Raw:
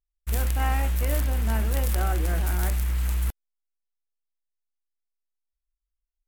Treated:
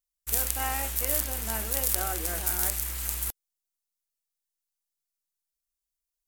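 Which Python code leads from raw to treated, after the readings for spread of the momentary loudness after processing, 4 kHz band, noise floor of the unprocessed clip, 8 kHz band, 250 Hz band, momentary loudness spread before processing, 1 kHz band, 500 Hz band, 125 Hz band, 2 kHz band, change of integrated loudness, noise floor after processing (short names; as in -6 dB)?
4 LU, +3.0 dB, -85 dBFS, +9.0 dB, -8.0 dB, 3 LU, -2.5 dB, -3.5 dB, -13.5 dB, -2.0 dB, -1.0 dB, under -85 dBFS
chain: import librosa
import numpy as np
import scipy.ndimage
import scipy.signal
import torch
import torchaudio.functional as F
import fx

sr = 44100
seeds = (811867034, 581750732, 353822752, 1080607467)

y = fx.bass_treble(x, sr, bass_db=-11, treble_db=12)
y = F.gain(torch.from_numpy(y), -2.5).numpy()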